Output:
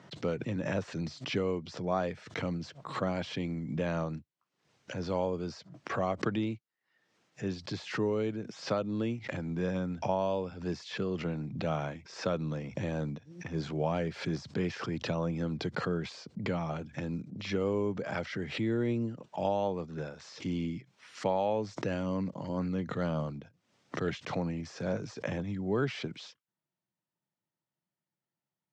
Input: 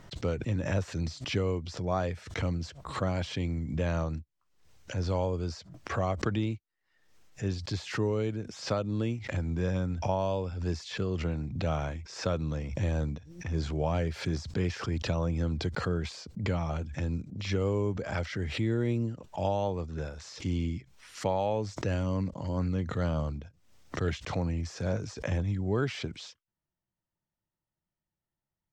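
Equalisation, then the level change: high-pass 130 Hz 24 dB/octave; distance through air 79 m; 0.0 dB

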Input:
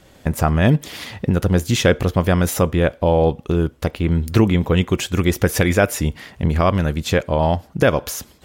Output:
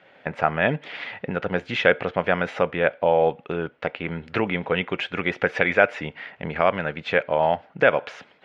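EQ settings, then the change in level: cabinet simulation 170–2200 Hz, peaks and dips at 230 Hz -5 dB, 340 Hz -7 dB, 1.1 kHz -8 dB, 1.8 kHz -3 dB; tilt EQ +4 dB/octave; +2.5 dB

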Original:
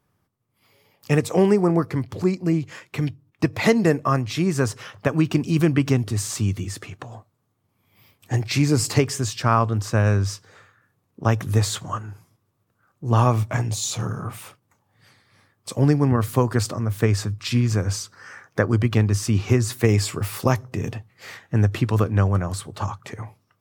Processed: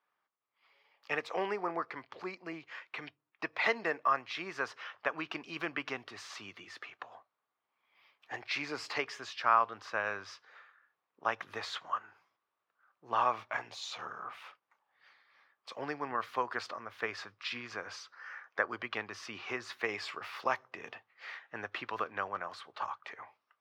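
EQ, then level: high-pass 1 kHz 12 dB/octave; distance through air 290 m; -1.5 dB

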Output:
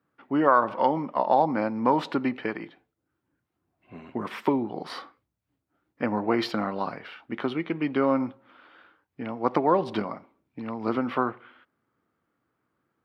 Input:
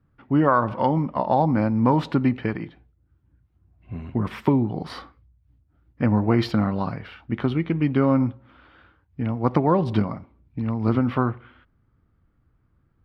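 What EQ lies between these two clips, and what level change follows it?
high-pass 340 Hz 12 dB/octave; 0.0 dB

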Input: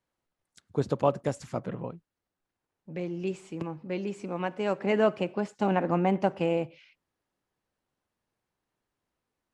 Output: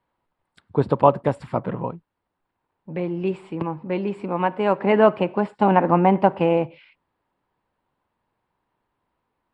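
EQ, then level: boxcar filter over 7 samples; peaking EQ 950 Hz +8 dB 0.46 oct; +7.5 dB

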